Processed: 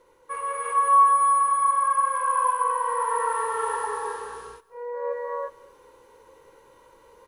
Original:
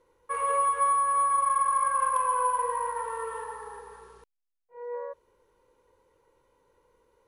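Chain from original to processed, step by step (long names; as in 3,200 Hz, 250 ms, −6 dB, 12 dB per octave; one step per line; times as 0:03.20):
low-shelf EQ 180 Hz −11.5 dB
reversed playback
downward compressor 10 to 1, threshold −37 dBFS, peak gain reduction 16 dB
reversed playback
low-shelf EQ 68 Hz +6.5 dB
single-tap delay 230 ms −22.5 dB
reverb whose tail is shaped and stops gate 380 ms rising, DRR −5 dB
level +8.5 dB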